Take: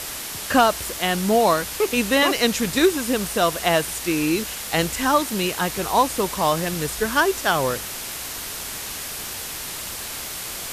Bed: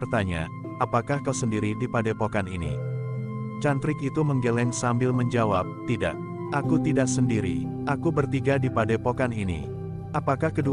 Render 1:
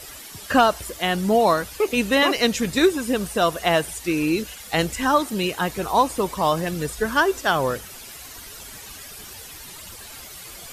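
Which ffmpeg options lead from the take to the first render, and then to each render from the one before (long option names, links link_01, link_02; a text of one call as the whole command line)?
ffmpeg -i in.wav -af "afftdn=noise_reduction=12:noise_floor=-32" out.wav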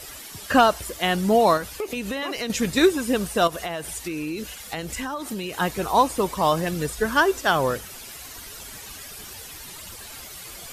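ffmpeg -i in.wav -filter_complex "[0:a]asettb=1/sr,asplit=3[link_01][link_02][link_03];[link_01]atrim=end=1.574[link_04];[link_02]atrim=start=1.57:end=2.5,asetpts=PTS-STARTPTS,afade=type=in:duration=0.004:curve=qsin,afade=type=out:start_time=0.926:duration=0.004:curve=qsin,acompressor=threshold=-25dB:ratio=6:attack=3.2:release=140:knee=1:detection=peak[link_05];[link_03]atrim=start=2.496[link_06];[link_04][link_05]acrossfade=duration=0.004:curve1=hsin:curve2=qsin[link_07];[link_07][link_06]acrossfade=duration=0.004:curve1=qsin:curve2=hsin,asettb=1/sr,asplit=3[link_08][link_09][link_10];[link_08]atrim=end=3.474[link_11];[link_09]atrim=start=3.47:end=5.56,asetpts=PTS-STARTPTS,afade=type=in:duration=0.004:curve=qsin,afade=type=out:start_time=2.086:duration=0.004:curve=qsin,acompressor=threshold=-26dB:ratio=8:attack=3.2:release=140:knee=1:detection=peak[link_12];[link_10]atrim=start=5.556[link_13];[link_11][link_12]acrossfade=duration=0.004:curve1=hsin:curve2=qsin[link_14];[link_14][link_13]acrossfade=duration=0.004:curve1=qsin:curve2=hsin" out.wav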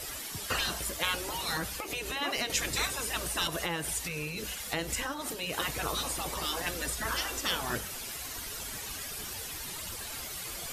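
ffmpeg -i in.wav -af "afftfilt=real='re*lt(hypot(re,im),0.178)':imag='im*lt(hypot(re,im),0.178)':win_size=1024:overlap=0.75,bandreject=frequency=196.4:width_type=h:width=4,bandreject=frequency=392.8:width_type=h:width=4,bandreject=frequency=589.2:width_type=h:width=4,bandreject=frequency=785.6:width_type=h:width=4,bandreject=frequency=982:width_type=h:width=4,bandreject=frequency=1178.4:width_type=h:width=4,bandreject=frequency=1374.8:width_type=h:width=4,bandreject=frequency=1571.2:width_type=h:width=4,bandreject=frequency=1767.6:width_type=h:width=4,bandreject=frequency=1964:width_type=h:width=4,bandreject=frequency=2160.4:width_type=h:width=4,bandreject=frequency=2356.8:width_type=h:width=4,bandreject=frequency=2553.2:width_type=h:width=4,bandreject=frequency=2749.6:width_type=h:width=4,bandreject=frequency=2946:width_type=h:width=4,bandreject=frequency=3142.4:width_type=h:width=4,bandreject=frequency=3338.8:width_type=h:width=4,bandreject=frequency=3535.2:width_type=h:width=4,bandreject=frequency=3731.6:width_type=h:width=4,bandreject=frequency=3928:width_type=h:width=4,bandreject=frequency=4124.4:width_type=h:width=4,bandreject=frequency=4320.8:width_type=h:width=4,bandreject=frequency=4517.2:width_type=h:width=4,bandreject=frequency=4713.6:width_type=h:width=4,bandreject=frequency=4910:width_type=h:width=4,bandreject=frequency=5106.4:width_type=h:width=4,bandreject=frequency=5302.8:width_type=h:width=4,bandreject=frequency=5499.2:width_type=h:width=4,bandreject=frequency=5695.6:width_type=h:width=4,bandreject=frequency=5892:width_type=h:width=4,bandreject=frequency=6088.4:width_type=h:width=4,bandreject=frequency=6284.8:width_type=h:width=4,bandreject=frequency=6481.2:width_type=h:width=4,bandreject=frequency=6677.6:width_type=h:width=4,bandreject=frequency=6874:width_type=h:width=4,bandreject=frequency=7070.4:width_type=h:width=4,bandreject=frequency=7266.8:width_type=h:width=4,bandreject=frequency=7463.2:width_type=h:width=4,bandreject=frequency=7659.6:width_type=h:width=4" out.wav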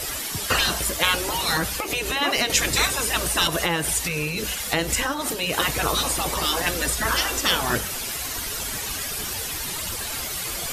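ffmpeg -i in.wav -af "volume=10dB" out.wav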